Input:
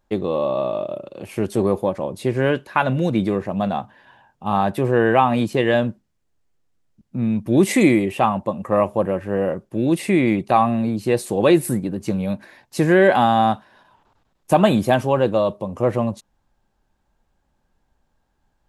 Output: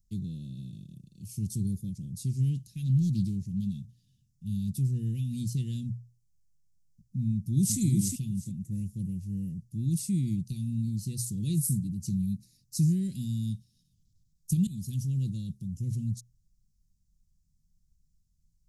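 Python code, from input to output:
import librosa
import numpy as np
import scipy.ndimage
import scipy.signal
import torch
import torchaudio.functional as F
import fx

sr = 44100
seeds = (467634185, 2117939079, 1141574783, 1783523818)

y = fx.doppler_dist(x, sr, depth_ms=0.28, at=(2.84, 3.65))
y = fx.echo_throw(y, sr, start_s=7.33, length_s=0.46, ms=360, feedback_pct=15, wet_db=-3.5)
y = fx.peak_eq(y, sr, hz=3300.0, db=-8.5, octaves=0.21, at=(12.19, 13.45))
y = fx.edit(y, sr, fx.fade_in_from(start_s=14.67, length_s=0.67, curve='qsin', floor_db=-20.5), tone=tone)
y = scipy.signal.sosfilt(scipy.signal.ellip(3, 1.0, 70, [160.0, 5500.0], 'bandstop', fs=sr, output='sos'), y)
y = fx.hum_notches(y, sr, base_hz=60, count=2)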